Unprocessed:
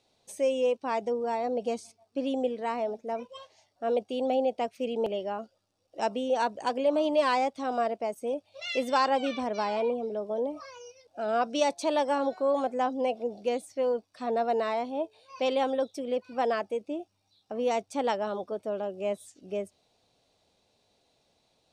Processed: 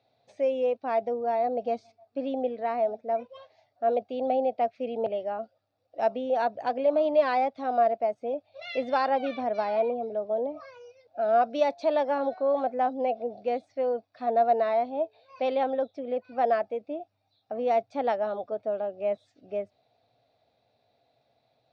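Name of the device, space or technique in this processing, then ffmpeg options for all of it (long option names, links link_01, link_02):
guitar cabinet: -filter_complex "[0:a]highpass=100,equalizer=frequency=120:width_type=q:width=4:gain=9,equalizer=frequency=180:width_type=q:width=4:gain=-9,equalizer=frequency=360:width_type=q:width=4:gain=-7,equalizer=frequency=690:width_type=q:width=4:gain=8,equalizer=frequency=1000:width_type=q:width=4:gain=-6,equalizer=frequency=3000:width_type=q:width=4:gain=-9,lowpass=frequency=3900:width=0.5412,lowpass=frequency=3900:width=1.3066,asettb=1/sr,asplit=3[link_01][link_02][link_03];[link_01]atrim=end=15.634[link_04];[link_02]atrim=start=15.63:end=16.25,asetpts=PTS-STARTPTS,afade=type=in:duration=0.004:curve=qsin,afade=type=out:start_time=0.616:duration=0.004:curve=qsin,highshelf=frequency=5700:gain=-10[link_05];[link_03]atrim=start=16.246[link_06];[link_04][link_05]acrossfade=duration=0.004:curve1=hsin:curve2=qsin[link_07];[link_07][link_06]acrossfade=duration=0.004:curve1=qsin:curve2=hsin"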